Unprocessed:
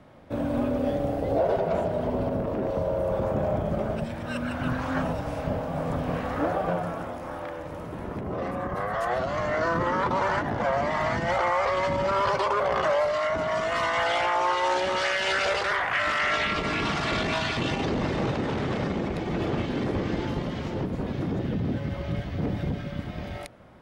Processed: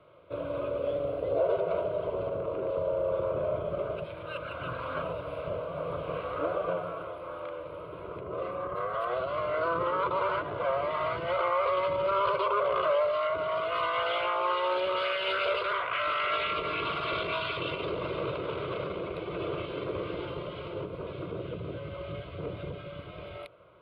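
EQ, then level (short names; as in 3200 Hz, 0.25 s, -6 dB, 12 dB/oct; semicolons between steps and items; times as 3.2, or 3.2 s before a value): running mean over 6 samples; HPF 240 Hz 6 dB/oct; fixed phaser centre 1200 Hz, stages 8; 0.0 dB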